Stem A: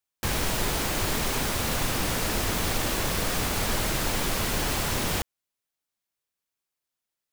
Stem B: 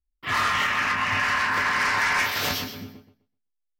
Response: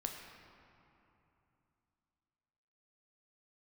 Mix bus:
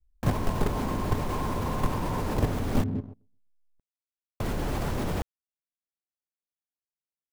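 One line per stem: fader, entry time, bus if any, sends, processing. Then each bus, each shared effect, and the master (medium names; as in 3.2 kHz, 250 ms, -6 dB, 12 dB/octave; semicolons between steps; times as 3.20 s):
-7.0 dB, 0.00 s, muted 2.84–4.40 s, no send, none
-0.5 dB, 0.00 s, no send, Chebyshev low-pass 1.1 kHz, order 10; tilt EQ -3 dB/octave; compression 12:1, threshold -33 dBFS, peak gain reduction 13 dB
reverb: none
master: tilt shelf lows +8.5 dB, about 1.5 kHz; level held to a coarse grid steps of 12 dB; waveshaping leveller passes 2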